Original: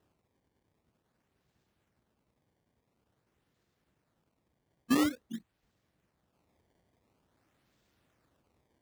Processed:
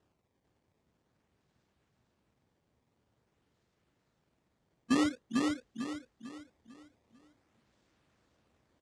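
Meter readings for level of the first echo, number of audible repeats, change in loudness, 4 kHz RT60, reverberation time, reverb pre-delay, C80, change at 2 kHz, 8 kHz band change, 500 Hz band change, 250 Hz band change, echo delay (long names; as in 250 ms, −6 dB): −3.0 dB, 4, −3.5 dB, no reverb audible, no reverb audible, no reverb audible, no reverb audible, +1.0 dB, −0.5 dB, +1.0 dB, +1.0 dB, 448 ms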